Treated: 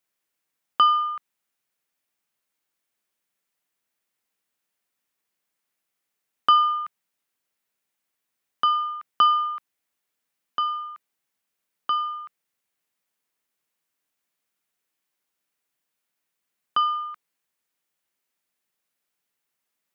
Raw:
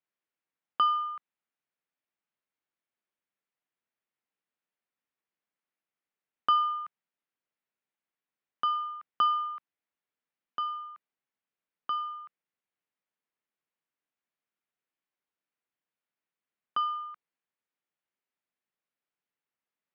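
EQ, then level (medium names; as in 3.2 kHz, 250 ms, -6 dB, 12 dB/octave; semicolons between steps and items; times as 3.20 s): treble shelf 3.9 kHz +9 dB; +6.5 dB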